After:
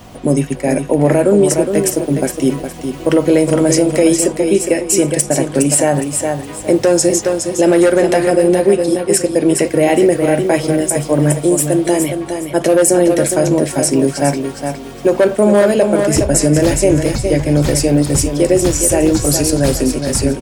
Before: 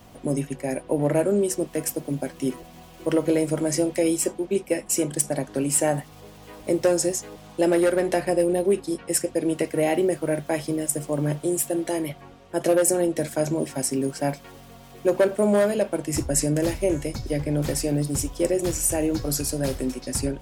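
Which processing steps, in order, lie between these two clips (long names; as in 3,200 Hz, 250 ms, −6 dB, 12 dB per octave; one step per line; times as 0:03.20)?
parametric band 13,000 Hz −8 dB 0.35 octaves
repeating echo 413 ms, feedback 28%, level −7.5 dB
boost into a limiter +12.5 dB
level −1 dB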